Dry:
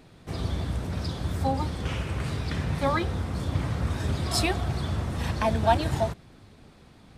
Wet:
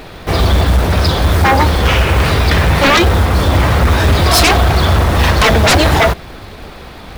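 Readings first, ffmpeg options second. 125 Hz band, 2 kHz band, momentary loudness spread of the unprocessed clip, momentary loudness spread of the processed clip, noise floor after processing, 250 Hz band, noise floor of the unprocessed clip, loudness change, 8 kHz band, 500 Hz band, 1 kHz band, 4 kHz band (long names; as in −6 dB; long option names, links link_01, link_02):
+16.0 dB, +21.5 dB, 7 LU, 4 LU, −33 dBFS, +14.5 dB, −53 dBFS, +17.0 dB, +18.5 dB, +15.5 dB, +16.5 dB, +20.5 dB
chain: -af "equalizer=frequency=125:width_type=o:width=1:gain=-10,equalizer=frequency=250:width_type=o:width=1:gain=-7,equalizer=frequency=8000:width_type=o:width=1:gain=-10,aeval=exprs='0.335*sin(PI/2*7.08*val(0)/0.335)':channel_layout=same,acrusher=bits=5:mode=log:mix=0:aa=0.000001,volume=4dB"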